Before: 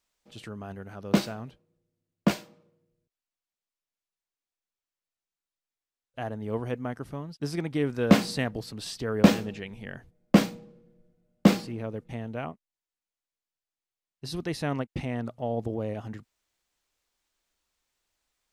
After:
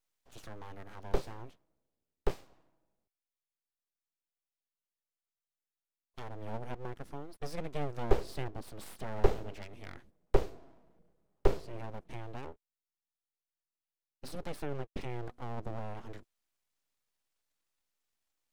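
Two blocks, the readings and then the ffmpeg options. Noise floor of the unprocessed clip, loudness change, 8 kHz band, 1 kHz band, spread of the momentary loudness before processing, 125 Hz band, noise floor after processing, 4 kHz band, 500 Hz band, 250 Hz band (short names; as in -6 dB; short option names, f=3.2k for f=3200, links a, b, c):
under -85 dBFS, -11.0 dB, -13.5 dB, -6.5 dB, 20 LU, -10.0 dB, under -85 dBFS, -15.0 dB, -6.5 dB, -18.0 dB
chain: -filter_complex "[0:a]acrossover=split=420[a][b];[b]acompressor=threshold=-40dB:ratio=6[c];[a][c]amix=inputs=2:normalize=0,aeval=exprs='abs(val(0))':c=same,volume=-4dB"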